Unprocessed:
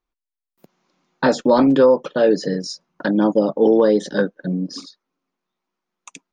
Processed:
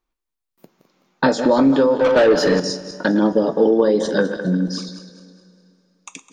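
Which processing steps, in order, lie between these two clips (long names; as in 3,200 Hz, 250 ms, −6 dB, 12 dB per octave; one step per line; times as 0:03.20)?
feedback delay that plays each chunk backwards 104 ms, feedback 61%, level −11 dB
downward compressor, threshold −15 dBFS, peak gain reduction 7.5 dB
0:01.99–0:02.60: mid-hump overdrive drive 18 dB, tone 3,200 Hz, clips at −9.5 dBFS
coupled-rooms reverb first 0.21 s, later 2.8 s, from −18 dB, DRR 9.5 dB
level +3 dB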